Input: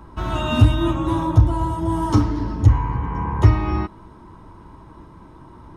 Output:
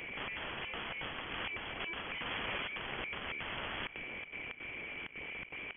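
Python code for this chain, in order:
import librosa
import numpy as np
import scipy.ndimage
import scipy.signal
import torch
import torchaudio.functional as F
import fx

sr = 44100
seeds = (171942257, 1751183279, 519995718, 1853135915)

p1 = scipy.signal.sosfilt(scipy.signal.butter(2, 520.0, 'highpass', fs=sr, output='sos'), x)
p2 = fx.peak_eq(p1, sr, hz=1000.0, db=11.0, octaves=0.71)
p3 = fx.quant_companded(p2, sr, bits=2)
p4 = p2 + (p3 * 10.0 ** (-3.0 / 20.0))
p5 = 10.0 ** (-15.0 / 20.0) * (np.abs((p4 / 10.0 ** (-15.0 / 20.0) + 3.0) % 4.0 - 2.0) - 1.0)
p6 = fx.step_gate(p5, sr, bpm=163, pattern='xxx.xxx.xx.xx', floor_db=-24.0, edge_ms=4.5)
p7 = (np.mod(10.0 ** (31.0 / 20.0) * p6 + 1.0, 2.0) - 1.0) / 10.0 ** (31.0 / 20.0)
p8 = p7 + fx.echo_single(p7, sr, ms=176, db=-19.0, dry=0)
p9 = fx.freq_invert(p8, sr, carrier_hz=3300)
y = p9 * 10.0 ** (1.5 / 20.0)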